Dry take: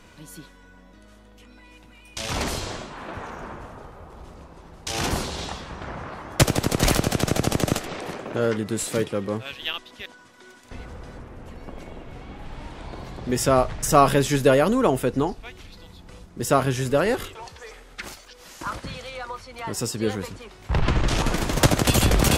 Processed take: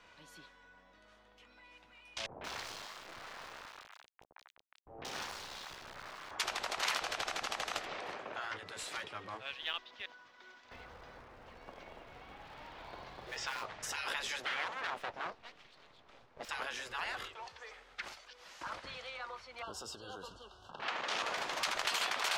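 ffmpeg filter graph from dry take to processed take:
-filter_complex "[0:a]asettb=1/sr,asplit=3[a][b][c];[a]atrim=end=2.264[d];[b]atrim=start=2.26:end=6.31,asetpts=PTS-STARTPTS,afade=t=in:d=0.004:c=qsin,afade=t=out:st=4.046:d=0.004:c=qsin,highpass=42,acrusher=bits=3:dc=4:mix=0:aa=0.000001,acrossover=split=750|2600[e][f][g];[f]adelay=150[h];[g]adelay=180[i];[e][h][i]amix=inputs=3:normalize=0,atrim=end_sample=178605[j];[c]atrim=start=6.306[k];[d][j]acrossfade=d=0.004:c1=hsin:c2=qsin[l];[l][k]acrossfade=d=0.004:c1=qsin:c2=hsin,asettb=1/sr,asplit=3[m][n][o];[m]atrim=end=9.654[p];[n]atrim=start=9.65:end=13.66,asetpts=PTS-STARTPTS,afade=t=in:d=0.004:c=qsin,afade=t=out:st=4.006:d=0.004:c=qsin,lowpass=f=6.3k:w=0.5412,lowpass=f=6.3k:w=1.3066,acrusher=bits=5:mode=log:mix=0:aa=0.000001[q];[o]atrim=start=13.656[r];[p][q]acrossfade=d=0.004:c1=hsin:c2=qsin[s];[s][r]acrossfade=d=0.004:c1=qsin:c2=hsin,asettb=1/sr,asplit=3[t][u][v];[t]atrim=end=14.404[w];[u]atrim=start=14.4:end=16.49,asetpts=PTS-STARTPTS,afade=t=in:d=0.004:c=qsin,afade=t=out:st=2.086:d=0.004:c=qsin,highpass=f=44:w=0.5412,highpass=f=44:w=1.3066,highshelf=f=5.4k:g=-11.5,aeval=exprs='abs(val(0))':c=same[x];[v]atrim=start=16.486[y];[w][x]acrossfade=d=0.004:c1=hsin:c2=qsin[z];[z][y]acrossfade=d=0.004:c1=qsin:c2=hsin,asettb=1/sr,asplit=3[aa][ab][ac];[aa]atrim=end=19.624[ad];[ab]atrim=start=19.62:end=20.8,asetpts=PTS-STARTPTS,afade=t=in:d=0.004:c=qsin,afade=t=out:st=1.176:d=0.004:c=qsin,equalizer=f=70:w=2.2:g=15,acompressor=threshold=-26dB:ratio=3:attack=3.2:release=140:knee=1:detection=peak,asuperstop=centerf=2100:order=20:qfactor=1.9[ae];[ac]atrim=start=20.796[af];[ad][ae]acrossfade=d=0.004:c1=hsin:c2=qsin[ag];[ag][af]acrossfade=d=0.004:c1=qsin:c2=hsin,afftfilt=real='re*lt(hypot(re,im),0.2)':imag='im*lt(hypot(re,im),0.2)':win_size=1024:overlap=0.75,acrossover=split=530 5500:gain=0.2 1 0.158[ah][ai][aj];[ah][ai][aj]amix=inputs=3:normalize=0,volume=-6.5dB"

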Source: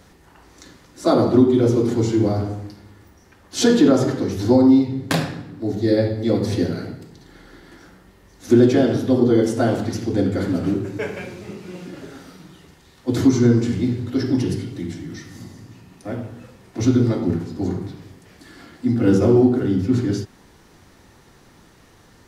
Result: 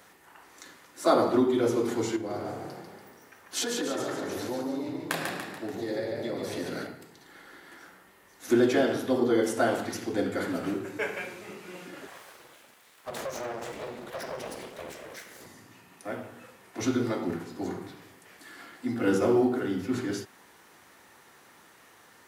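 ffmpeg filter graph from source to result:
-filter_complex "[0:a]asettb=1/sr,asplit=3[a][b][c];[a]atrim=end=2.164[d];[b]atrim=start=2.16:end=6.87,asetpts=PTS-STARTPTS,afade=t=in:d=0.004:c=qsin,afade=t=out:st=4.706:d=0.004:c=qsin,acompressor=threshold=-22dB:ratio=5:attack=3.2:release=140:knee=1:detection=peak,asplit=7[e][f][g][h][i][j][k];[f]adelay=144,afreqshift=32,volume=-5dB[l];[g]adelay=288,afreqshift=64,volume=-11dB[m];[h]adelay=432,afreqshift=96,volume=-17dB[n];[i]adelay=576,afreqshift=128,volume=-23.1dB[o];[j]adelay=720,afreqshift=160,volume=-29.1dB[p];[k]adelay=864,afreqshift=192,volume=-35.1dB[q];[e][l][m][n][o][p][q]amix=inputs=7:normalize=0,atrim=end_sample=207711[r];[c]atrim=start=6.866[s];[d][r]acrossfade=d=0.004:c1=hsin:c2=qsin[t];[t][s]acrossfade=d=0.004:c1=qsin:c2=hsin,asettb=1/sr,asplit=3[u][v][w];[u]atrim=end=12.074[x];[v]atrim=start=12.07:end=15.46,asetpts=PTS-STARTPTS,afade=t=in:d=0.004:c=qsin,afade=t=out:st=3.386:d=0.004:c=qsin,acompressor=threshold=-23dB:ratio=3:attack=3.2:release=140:knee=1:detection=peak,aeval=exprs='abs(val(0))':c=same[y];[w]atrim=start=15.456[z];[x][y]acrossfade=d=0.004:c1=hsin:c2=qsin[aa];[aa][z]acrossfade=d=0.004:c1=qsin:c2=hsin,highpass=f=1.4k:p=1,equalizer=f=4.9k:w=0.81:g=-9,volume=4dB"

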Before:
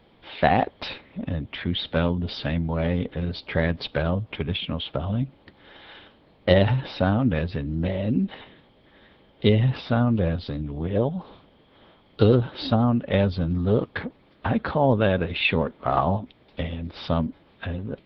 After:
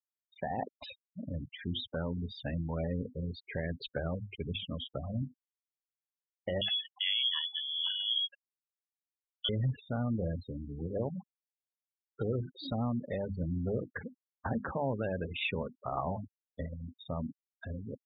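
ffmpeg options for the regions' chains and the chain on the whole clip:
-filter_complex "[0:a]asettb=1/sr,asplit=3[a][b][c];[a]atrim=end=6.614[d];[b]atrim=start=6.61:end=9.49,asetpts=PTS-STARTPTS,afade=t=in:d=0.004:c=qsin,afade=t=out:st=2.876:d=0.004:c=qsin,adynamicequalizer=threshold=0.0112:dfrequency=2400:dqfactor=0.7:tfrequency=2400:tqfactor=0.7:attack=5:release=100:ratio=0.375:range=1.5:mode=boostabove:tftype=bell,lowpass=f=3k:t=q:w=0.5098,lowpass=f=3k:t=q:w=0.6013,lowpass=f=3k:t=q:w=0.9,lowpass=f=3k:t=q:w=2.563,afreqshift=-3500[e];[c]atrim=start=9.486[f];[d][e]acrossfade=d=0.004:c1=hsin:c2=qsin[g];[g][f]acrossfade=d=0.004:c1=qsin:c2=hsin,alimiter=limit=-13dB:level=0:latency=1:release=124,bandreject=f=50:t=h:w=6,bandreject=f=100:t=h:w=6,bandreject=f=150:t=h:w=6,bandreject=f=200:t=h:w=6,bandreject=f=250:t=h:w=6,bandreject=f=300:t=h:w=6,bandreject=f=350:t=h:w=6,afftfilt=real='re*gte(hypot(re,im),0.0562)':imag='im*gte(hypot(re,im),0.0562)':win_size=1024:overlap=0.75,volume=-9dB"

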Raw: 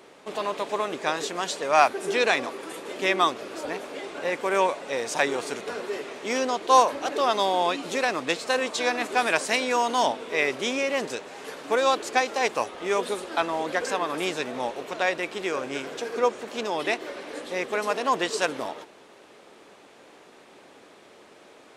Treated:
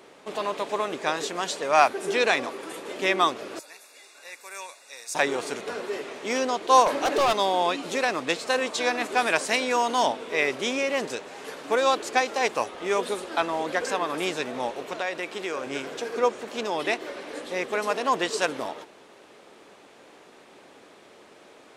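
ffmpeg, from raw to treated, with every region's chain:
-filter_complex "[0:a]asettb=1/sr,asplit=3[a][b][c];[a]atrim=end=3.594[d];[b]atrim=start=3.59:end=5.15,asetpts=PTS-STARTPTS,afade=t=in:d=0.004:c=qsin,afade=t=out:st=1.556:d=0.004:c=qsin,asuperstop=centerf=3100:order=20:qfactor=6.2,aderivative[e];[c]atrim=start=5.146[f];[d][e]acrossfade=d=0.004:c1=hsin:c2=qsin[g];[g][f]acrossfade=d=0.004:c1=qsin:c2=hsin,asettb=1/sr,asplit=3[h][i][j];[h]atrim=end=6.864[k];[i]atrim=start=6.86:end=7.33,asetpts=PTS-STARTPTS,afade=t=in:d=0.004:c=qsin,afade=t=out:st=0.466:d=0.004:c=qsin,highpass=150,acontrast=38,volume=18dB,asoftclip=hard,volume=-18dB[l];[j]atrim=start=7.326[m];[k][l]acrossfade=d=0.004:c1=hsin:c2=qsin[n];[n][m]acrossfade=d=0.004:c1=qsin:c2=hsin,asettb=1/sr,asplit=3[o][p][q];[o]atrim=end=15.004[r];[p]atrim=start=15:end=15.67,asetpts=PTS-STARTPTS,afade=t=in:d=0.004:c=qsin,afade=t=out:st=0.666:d=0.004:c=qsin,lowshelf=f=120:g=-9.5,acompressor=threshold=-27dB:ratio=2:attack=3.2:release=140:knee=1:detection=peak[s];[q]atrim=start=15.666[t];[r][s]acrossfade=d=0.004:c1=hsin:c2=qsin[u];[u][t]acrossfade=d=0.004:c1=qsin:c2=hsin"

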